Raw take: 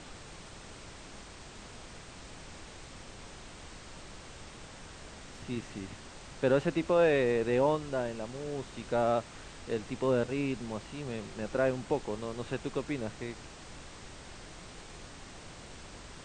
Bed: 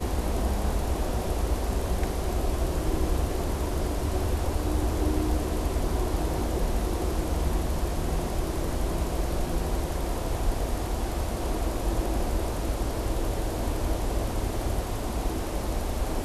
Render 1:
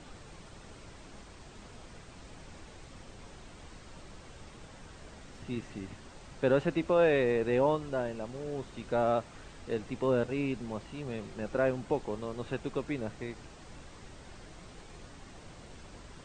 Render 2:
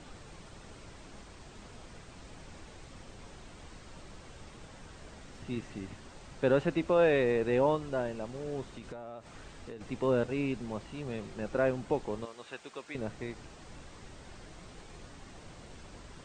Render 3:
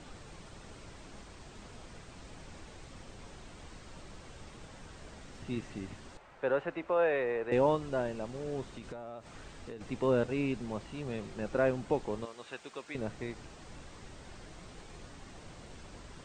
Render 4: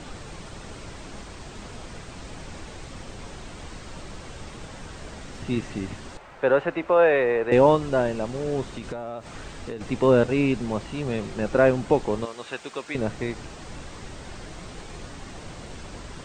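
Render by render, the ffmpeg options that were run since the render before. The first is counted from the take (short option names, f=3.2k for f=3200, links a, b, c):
-af "afftdn=nr=6:nf=-49"
-filter_complex "[0:a]asettb=1/sr,asplit=3[a][b][c];[a]atrim=end=8.694[d];[b]atrim=start=8.69:end=9.81,asetpts=PTS-STARTPTS,afade=t=in:d=0.004:c=qsin,afade=t=out:st=1.116:d=0.004:c=qsin,acompressor=threshold=-39dB:ratio=16:attack=3.2:release=140:knee=1:detection=peak[e];[c]atrim=start=9.806[f];[d][e]acrossfade=d=0.004:c1=hsin:c2=qsin[g];[g][f]acrossfade=d=0.004:c1=qsin:c2=hsin,asettb=1/sr,asplit=3[h][i][j];[h]atrim=end=12.254[k];[i]atrim=start=12.25:end=12.95,asetpts=PTS-STARTPTS,afade=t=in:d=0.004:c=qsin,afade=t=out:st=0.696:d=0.004:c=qsin,highpass=f=1.3k:p=1[l];[j]atrim=start=12.946[m];[k][l]acrossfade=d=0.004:c1=hsin:c2=qsin[n];[n][m]acrossfade=d=0.004:c1=qsin:c2=hsin"
-filter_complex "[0:a]asettb=1/sr,asplit=3[a][b][c];[a]atrim=end=6.174[d];[b]atrim=start=6.17:end=7.52,asetpts=PTS-STARTPTS,afade=t=in:d=0.004:c=qsin,afade=t=out:st=1.346:d=0.004:c=qsin,acrossover=split=460 2500:gain=0.2 1 0.158[e][f][g];[e][f][g]amix=inputs=3:normalize=0[h];[c]atrim=start=7.516[i];[d][h]acrossfade=d=0.004:c1=hsin:c2=qsin[j];[j][i]acrossfade=d=0.004:c1=qsin:c2=hsin"
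-af "volume=10.5dB"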